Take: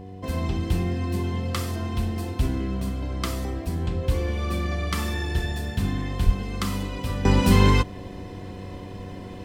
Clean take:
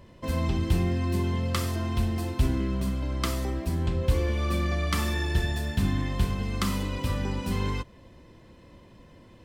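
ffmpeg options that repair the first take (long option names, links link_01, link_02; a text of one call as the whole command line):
ffmpeg -i in.wav -filter_complex "[0:a]bandreject=frequency=95.8:width_type=h:width=4,bandreject=frequency=191.6:width_type=h:width=4,bandreject=frequency=287.4:width_type=h:width=4,bandreject=frequency=383.2:width_type=h:width=4,bandreject=frequency=479:width_type=h:width=4,bandreject=frequency=730:width=30,asplit=3[link_01][link_02][link_03];[link_01]afade=type=out:start_time=6.25:duration=0.02[link_04];[link_02]highpass=frequency=140:width=0.5412,highpass=frequency=140:width=1.3066,afade=type=in:start_time=6.25:duration=0.02,afade=type=out:start_time=6.37:duration=0.02[link_05];[link_03]afade=type=in:start_time=6.37:duration=0.02[link_06];[link_04][link_05][link_06]amix=inputs=3:normalize=0,asetnsamples=nb_out_samples=441:pad=0,asendcmd='7.25 volume volume -12dB',volume=0dB" out.wav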